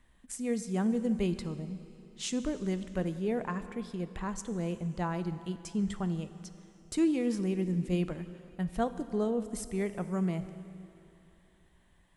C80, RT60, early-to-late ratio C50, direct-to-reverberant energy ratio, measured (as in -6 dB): 13.0 dB, 2.9 s, 12.0 dB, 11.5 dB